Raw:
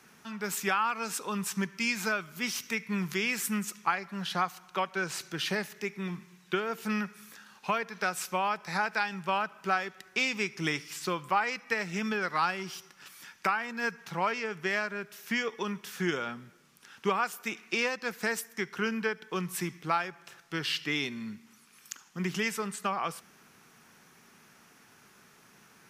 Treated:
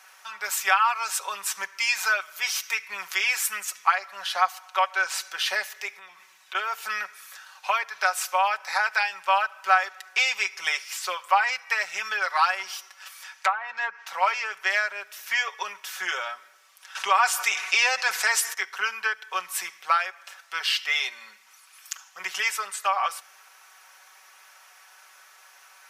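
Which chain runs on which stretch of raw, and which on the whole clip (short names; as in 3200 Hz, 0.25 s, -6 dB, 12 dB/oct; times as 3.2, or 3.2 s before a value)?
5.98–6.55 HPF 49 Hz + compressor 12:1, threshold -40 dBFS
13.13–14.07 self-modulated delay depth 0.084 ms + treble ducked by the level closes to 990 Hz, closed at -25.5 dBFS
16.95–18.54 LPF 11000 Hz + bell 7100 Hz +3 dB 1.7 oct + fast leveller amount 50%
whole clip: inverse Chebyshev high-pass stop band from 310 Hz, stop band 40 dB; comb 5.3 ms; gain +5.5 dB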